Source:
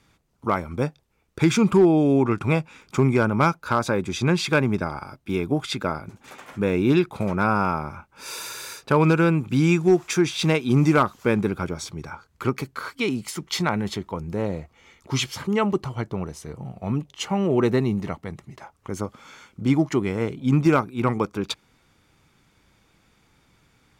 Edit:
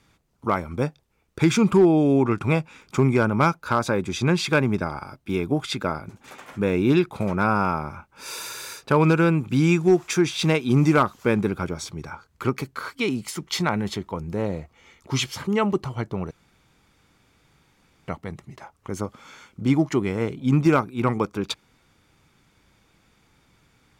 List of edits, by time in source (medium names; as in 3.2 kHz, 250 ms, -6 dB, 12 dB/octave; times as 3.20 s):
16.31–18.08 s: room tone